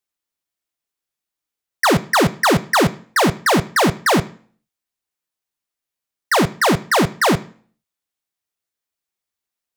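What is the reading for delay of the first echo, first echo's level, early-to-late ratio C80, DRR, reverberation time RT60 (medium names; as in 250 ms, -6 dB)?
no echo, no echo, 22.5 dB, 11.0 dB, 0.45 s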